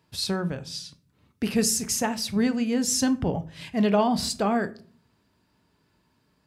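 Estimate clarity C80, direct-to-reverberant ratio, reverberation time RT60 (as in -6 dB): 23.0 dB, 11.0 dB, 0.45 s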